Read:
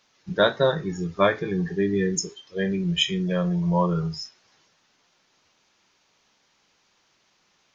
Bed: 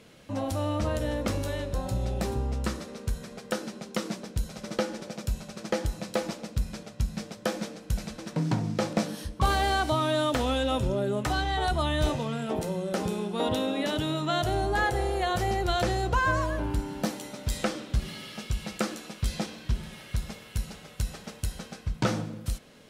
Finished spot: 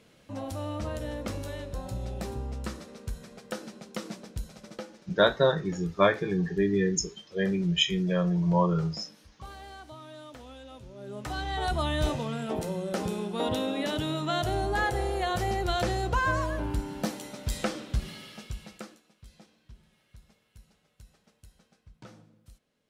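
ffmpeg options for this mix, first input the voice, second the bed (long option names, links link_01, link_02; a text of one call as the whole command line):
ffmpeg -i stem1.wav -i stem2.wav -filter_complex "[0:a]adelay=4800,volume=-2dB[link_01];[1:a]volume=13dB,afade=type=out:start_time=4.34:duration=0.74:silence=0.188365,afade=type=in:start_time=10.94:duration=0.8:silence=0.11885,afade=type=out:start_time=17.91:duration=1.11:silence=0.0841395[link_02];[link_01][link_02]amix=inputs=2:normalize=0" out.wav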